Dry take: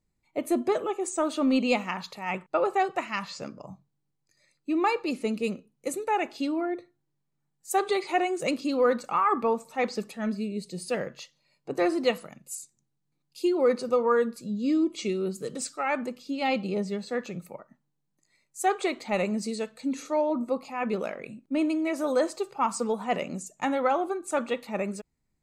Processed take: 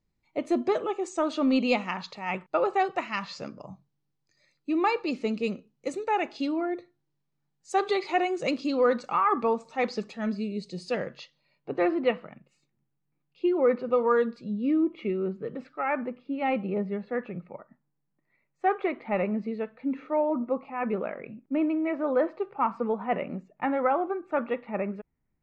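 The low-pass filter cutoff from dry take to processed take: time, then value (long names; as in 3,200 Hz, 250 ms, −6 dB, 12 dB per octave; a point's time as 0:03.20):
low-pass filter 24 dB per octave
0:10.92 6,000 Hz
0:12.05 2,700 Hz
0:13.89 2,700 Hz
0:14.11 5,800 Hz
0:14.78 2,300 Hz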